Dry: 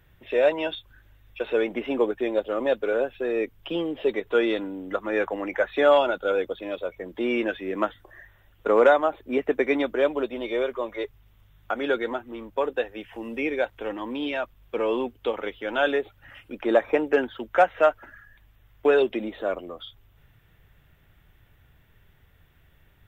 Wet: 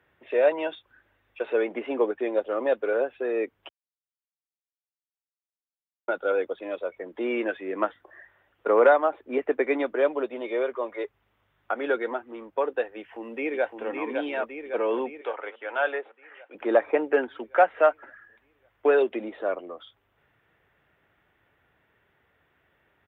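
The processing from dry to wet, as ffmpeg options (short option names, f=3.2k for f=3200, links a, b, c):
-filter_complex "[0:a]asplit=2[a][b];[b]afade=t=in:st=12.97:d=0.01,afade=t=out:st=13.87:d=0.01,aecho=0:1:560|1120|1680|2240|2800|3360|3920|4480|5040:0.595662|0.357397|0.214438|0.128663|0.0771978|0.0463187|0.0277912|0.0166747|0.0100048[c];[a][c]amix=inputs=2:normalize=0,asettb=1/sr,asplit=3[d][e][f];[d]atrim=end=15.214[g];[e]atrim=start=15.21:end=16.55,asetpts=PTS-STARTPTS,afade=t=in:d=0.004:c=qsin,afade=t=out:st=1.336:d=0.004:c=qsin,highpass=580,lowpass=3.2k[h];[f]atrim=start=16.546[i];[g][h]acrossfade=d=0.004:c1=hsin:c2=qsin[j];[j][i]acrossfade=d=0.004:c1=qsin:c2=hsin,asplit=3[k][l][m];[k]atrim=end=3.69,asetpts=PTS-STARTPTS,afade=t=out:st=3.686:d=0.004:c=hsin[n];[l]atrim=start=3.69:end=6.08,asetpts=PTS-STARTPTS,volume=0[o];[m]atrim=start=6.08,asetpts=PTS-STARTPTS,afade=t=in:d=0.004:c=hsin[p];[n][o][p]concat=n=3:v=0:a=1,highpass=62,acrossover=split=260 2700:gain=0.158 1 0.141[q][r][s];[q][r][s]amix=inputs=3:normalize=0"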